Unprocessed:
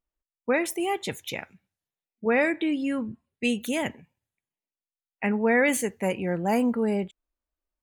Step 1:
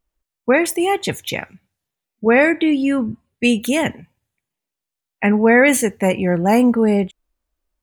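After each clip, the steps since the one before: bass shelf 140 Hz +4.5 dB; trim +9 dB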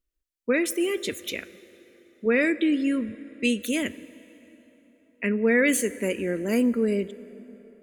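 static phaser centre 340 Hz, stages 4; plate-style reverb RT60 4 s, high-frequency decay 0.65×, DRR 16.5 dB; trim -6 dB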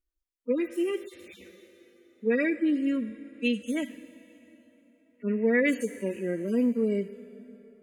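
harmonic-percussive separation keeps harmonic; trim -2.5 dB

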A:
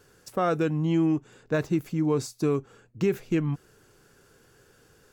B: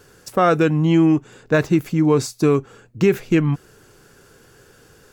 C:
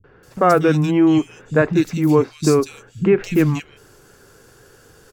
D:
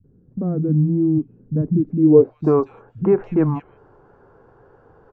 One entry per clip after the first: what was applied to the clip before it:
dynamic bell 2 kHz, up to +3 dB, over -43 dBFS, Q 0.74; trim +8.5 dB
three bands offset in time lows, mids, highs 40/230 ms, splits 190/2600 Hz; trim +2 dB
low-pass sweep 220 Hz -> 920 Hz, 1.77–2.52 s; trim -2.5 dB

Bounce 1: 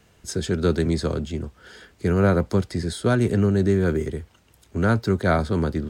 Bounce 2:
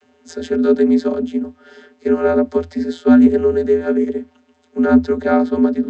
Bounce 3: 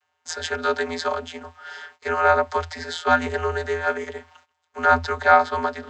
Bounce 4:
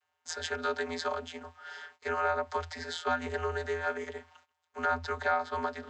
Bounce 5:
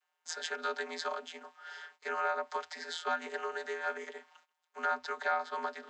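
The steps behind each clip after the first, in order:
vocoder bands 32, square 83.5 Hz; trim +8 dB
gate -49 dBFS, range -19 dB; FFT filter 110 Hz 0 dB, 170 Hz -24 dB, 310 Hz -19 dB, 910 Hz +11 dB, 2.3 kHz +8 dB; trim -1 dB
compression 2.5:1, threshold -21 dBFS, peak gain reduction 8.5 dB; trim -7 dB
high-pass 220 Hz 24 dB/octave; bass shelf 370 Hz -10 dB; trim -1.5 dB

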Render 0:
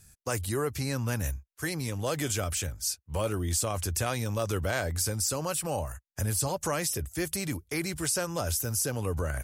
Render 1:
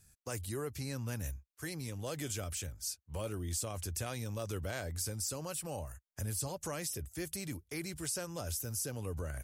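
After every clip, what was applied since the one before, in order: dynamic bell 1.1 kHz, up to -4 dB, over -46 dBFS, Q 0.75; trim -8 dB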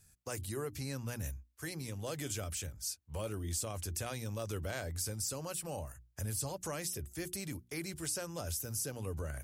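hum notches 60/120/180/240/300/360 Hz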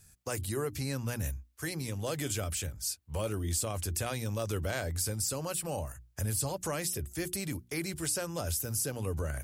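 dynamic bell 6 kHz, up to -4 dB, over -55 dBFS, Q 4.1; trim +5.5 dB

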